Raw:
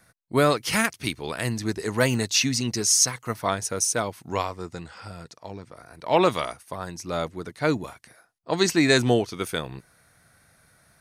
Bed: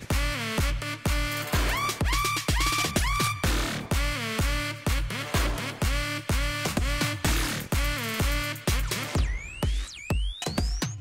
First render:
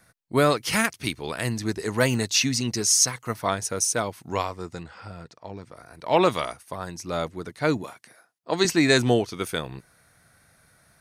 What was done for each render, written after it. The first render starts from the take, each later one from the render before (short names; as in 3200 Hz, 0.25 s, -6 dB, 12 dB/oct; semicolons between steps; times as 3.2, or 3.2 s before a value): 4.83–5.57 high shelf 5400 Hz -12 dB; 7.82–8.65 HPF 170 Hz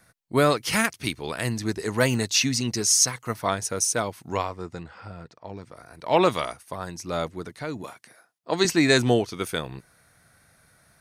4.37–5.49 high shelf 4200 Hz -7.5 dB; 7.42–7.84 compressor 2.5:1, threshold -32 dBFS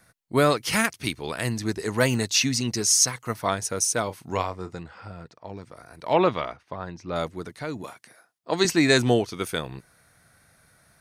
4.03–4.76 doubler 32 ms -12.5 dB; 6.13–7.16 air absorption 220 m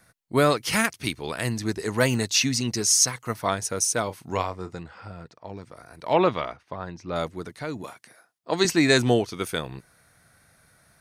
nothing audible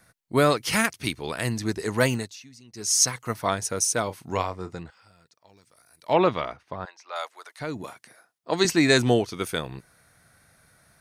2.06–3.02 dip -24 dB, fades 0.30 s; 4.9–6.09 pre-emphasis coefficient 0.9; 6.85–7.6 HPF 710 Hz 24 dB/oct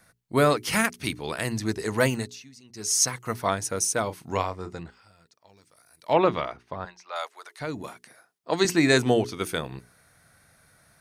notches 60/120/180/240/300/360/420 Hz; dynamic EQ 4500 Hz, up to -3 dB, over -34 dBFS, Q 0.85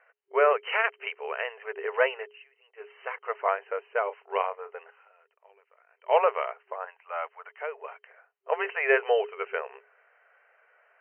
FFT band-pass 390–3100 Hz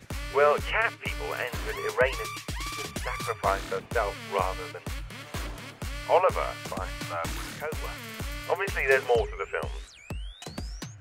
add bed -9.5 dB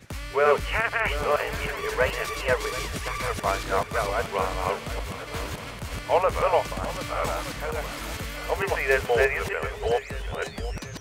reverse delay 0.454 s, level -0.5 dB; swung echo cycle 1.221 s, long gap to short 1.5:1, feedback 33%, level -14 dB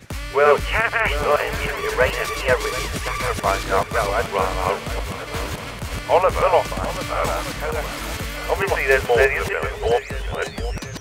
gain +5.5 dB